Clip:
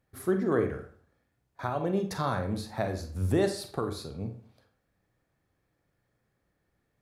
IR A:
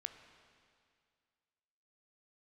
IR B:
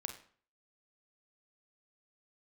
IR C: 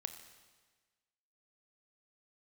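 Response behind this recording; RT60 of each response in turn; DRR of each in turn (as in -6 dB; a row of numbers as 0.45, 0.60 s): B; 2.2, 0.50, 1.4 s; 8.0, 5.5, 7.5 dB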